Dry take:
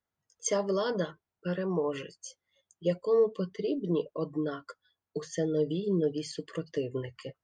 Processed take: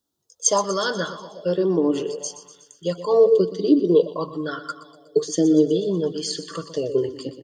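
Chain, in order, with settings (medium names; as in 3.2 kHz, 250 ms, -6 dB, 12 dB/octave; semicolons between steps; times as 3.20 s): FFT filter 1.2 kHz 0 dB, 2.2 kHz -10 dB, 3.6 kHz +11 dB; on a send: feedback delay 122 ms, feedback 60%, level -13 dB; on the sum: sweeping bell 0.55 Hz 290–1600 Hz +16 dB; trim +2.5 dB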